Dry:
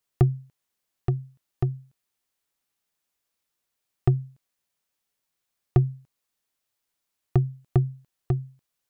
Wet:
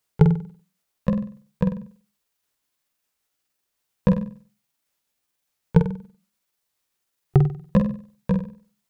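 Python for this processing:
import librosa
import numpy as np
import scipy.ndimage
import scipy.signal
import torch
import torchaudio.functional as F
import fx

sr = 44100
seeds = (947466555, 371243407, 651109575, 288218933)

y = fx.pitch_ramps(x, sr, semitones=8.0, every_ms=608)
y = fx.room_flutter(y, sr, wall_m=8.2, rt60_s=0.43)
y = y * 10.0 ** (4.5 / 20.0)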